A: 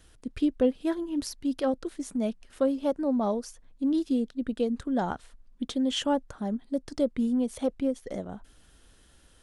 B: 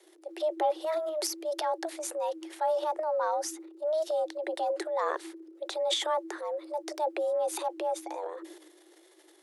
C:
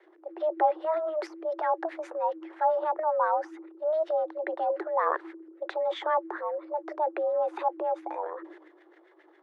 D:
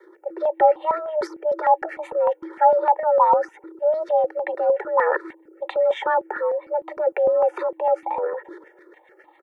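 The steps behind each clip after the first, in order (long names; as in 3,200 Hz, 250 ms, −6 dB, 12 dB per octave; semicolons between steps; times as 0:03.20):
transient designer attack −3 dB, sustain +11 dB; frequency shifter +310 Hz; level −3 dB
auto-filter low-pass sine 7.4 Hz 1,000–2,000 Hz
comb filter 2.2 ms, depth 87%; step-sequenced phaser 6.6 Hz 730–1,500 Hz; level +8 dB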